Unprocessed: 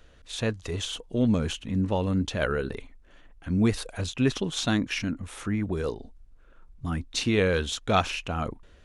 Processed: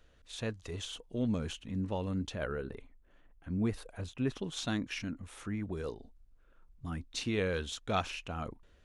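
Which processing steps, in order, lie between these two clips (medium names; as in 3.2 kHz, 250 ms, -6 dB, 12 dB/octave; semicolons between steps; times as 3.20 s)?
2.35–4.42 s: peaking EQ 5.6 kHz -8 dB 2.4 oct; trim -9 dB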